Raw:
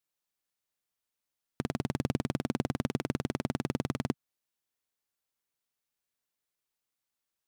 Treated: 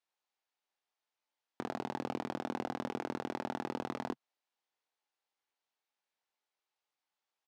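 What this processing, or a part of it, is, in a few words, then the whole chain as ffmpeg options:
intercom: -filter_complex "[0:a]highpass=340,lowpass=4700,equalizer=frequency=830:width_type=o:width=0.47:gain=7,asoftclip=type=tanh:threshold=-23.5dB,asplit=2[link_01][link_02];[link_02]adelay=23,volume=-6.5dB[link_03];[link_01][link_03]amix=inputs=2:normalize=0"

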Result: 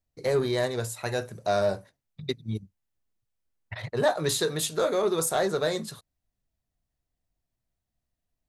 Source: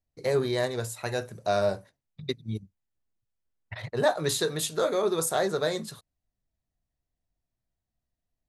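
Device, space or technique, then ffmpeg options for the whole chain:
parallel distortion: -filter_complex "[0:a]asplit=2[link_01][link_02];[link_02]asoftclip=type=hard:threshold=-24.5dB,volume=-8dB[link_03];[link_01][link_03]amix=inputs=2:normalize=0,volume=-1.5dB"

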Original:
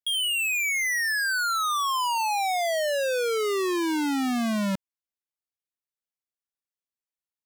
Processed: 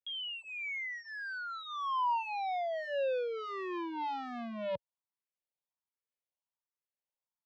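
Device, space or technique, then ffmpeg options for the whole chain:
barber-pole phaser into a guitar amplifier: -filter_complex "[0:a]asplit=2[link_01][link_02];[link_02]afreqshift=1.3[link_03];[link_01][link_03]amix=inputs=2:normalize=1,asoftclip=type=tanh:threshold=-33dB,highpass=90,equalizer=frequency=260:width_type=q:width=4:gain=-7,equalizer=frequency=560:width_type=q:width=4:gain=9,equalizer=frequency=940:width_type=q:width=4:gain=10,equalizer=frequency=1500:width_type=q:width=4:gain=-3,lowpass=frequency=3500:width=0.5412,lowpass=frequency=3500:width=1.3066,volume=-3.5dB"

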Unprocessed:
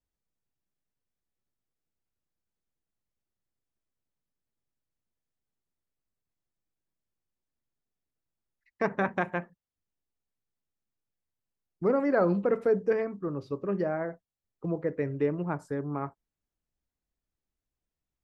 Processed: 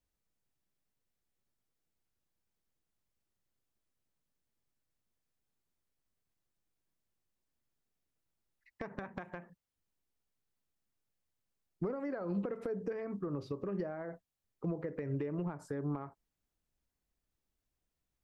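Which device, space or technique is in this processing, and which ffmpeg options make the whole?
de-esser from a sidechain: -filter_complex "[0:a]asplit=2[link_01][link_02];[link_02]highpass=frequency=4200:poles=1,apad=whole_len=804127[link_03];[link_01][link_03]sidechaincompress=threshold=-56dB:ratio=6:attack=4.8:release=90,volume=2dB"

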